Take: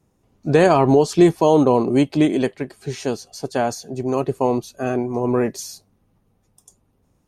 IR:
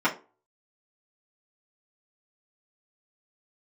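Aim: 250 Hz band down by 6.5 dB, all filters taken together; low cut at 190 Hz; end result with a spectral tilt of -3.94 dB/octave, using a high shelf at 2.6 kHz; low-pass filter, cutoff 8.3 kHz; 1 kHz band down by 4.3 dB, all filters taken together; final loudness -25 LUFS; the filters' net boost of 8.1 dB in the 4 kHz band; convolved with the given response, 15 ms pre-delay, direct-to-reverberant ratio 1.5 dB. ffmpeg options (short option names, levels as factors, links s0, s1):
-filter_complex "[0:a]highpass=190,lowpass=8300,equalizer=f=250:t=o:g=-7.5,equalizer=f=1000:t=o:g=-6.5,highshelf=f=2600:g=8,equalizer=f=4000:t=o:g=4,asplit=2[s0][s1];[1:a]atrim=start_sample=2205,adelay=15[s2];[s1][s2]afir=irnorm=-1:irlink=0,volume=0.158[s3];[s0][s3]amix=inputs=2:normalize=0,volume=0.596"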